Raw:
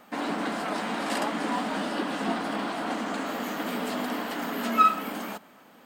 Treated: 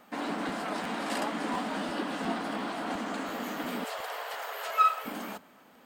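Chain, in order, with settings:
0:03.84–0:05.06: Butterworth high-pass 460 Hz 48 dB per octave
regular buffer underruns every 0.35 s, samples 512, repeat, from 0:00.48
level −3.5 dB

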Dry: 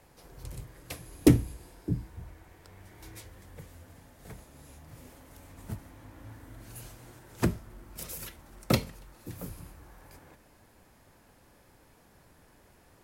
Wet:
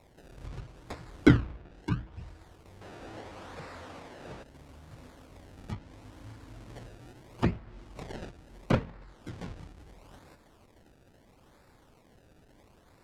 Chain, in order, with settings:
sample-and-hold swept by an LFO 28×, swing 100% 0.75 Hz
0:02.81–0:04.43: mid-hump overdrive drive 25 dB, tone 4,600 Hz, clips at −35 dBFS
treble cut that deepens with the level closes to 2,700 Hz, closed at −31 dBFS

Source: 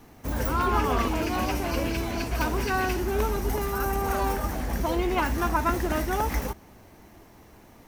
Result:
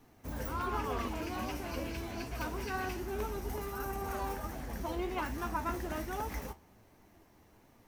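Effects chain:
flanger 1.3 Hz, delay 6.6 ms, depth 7.8 ms, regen +63%
level −6.5 dB

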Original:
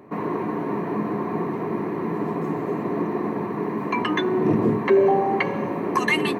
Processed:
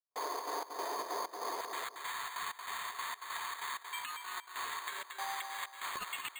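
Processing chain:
high-pass filter 560 Hz 24 dB per octave, from 0:01.61 1,300 Hz
downward compressor 6 to 1, threshold −35 dBFS, peak gain reduction 16.5 dB
brickwall limiter −32 dBFS, peak gain reduction 11 dB
gate pattern "..xxx.xx" 191 BPM −60 dB
feedback echo with a low-pass in the loop 229 ms, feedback 30%, low-pass 3,600 Hz, level −5 dB
bad sample-rate conversion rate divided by 8×, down none, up hold
level +2.5 dB

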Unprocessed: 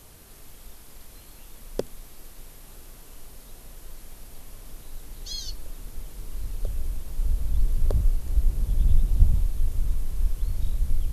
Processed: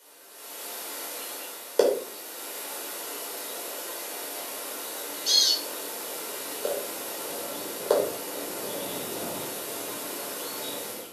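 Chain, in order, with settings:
high-pass filter 370 Hz 24 dB per octave
automatic gain control gain up to 16 dB
rectangular room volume 510 cubic metres, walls furnished, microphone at 4.7 metres
level −6.5 dB

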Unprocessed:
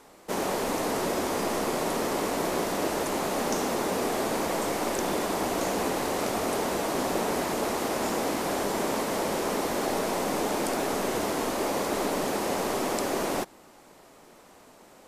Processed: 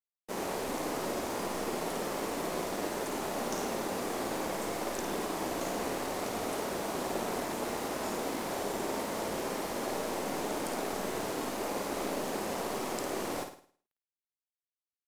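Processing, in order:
dead-zone distortion −41.5 dBFS
flutter between parallel walls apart 9.2 metres, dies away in 0.48 s
level −6 dB

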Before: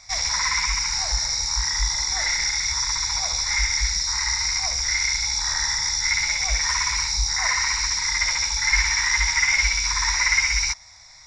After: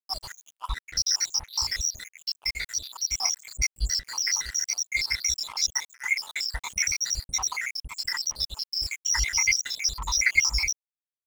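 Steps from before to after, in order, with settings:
time-frequency cells dropped at random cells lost 82%
high-shelf EQ 2,000 Hz +4 dB
dead-zone distortion −38.5 dBFS

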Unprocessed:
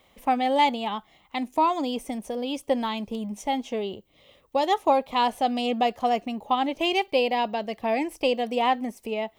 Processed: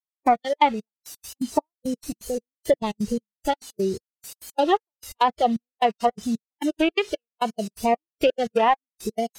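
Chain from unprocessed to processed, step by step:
adaptive Wiener filter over 41 samples
in parallel at +3 dB: downward compressor 10 to 1, threshold −32 dBFS, peak gain reduction 16 dB
on the sum: bit-depth reduction 6 bits, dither triangular
gate pattern "...x.x.xx" 170 BPM −60 dB
noise gate with hold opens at −34 dBFS
noise reduction from a noise print of the clip's start 16 dB
pitch vibrato 2.3 Hz 96 cents
treble cut that deepens with the level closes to 2,100 Hz, closed at −19 dBFS
level +4 dB

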